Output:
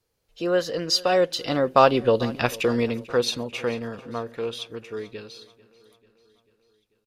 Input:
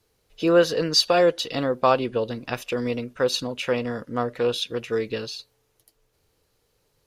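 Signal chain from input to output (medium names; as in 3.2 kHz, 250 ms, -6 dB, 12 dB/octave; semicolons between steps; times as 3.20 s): Doppler pass-by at 2.29 s, 15 m/s, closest 7.8 m; on a send: feedback delay 442 ms, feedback 59%, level -21 dB; on the sum: trim +6 dB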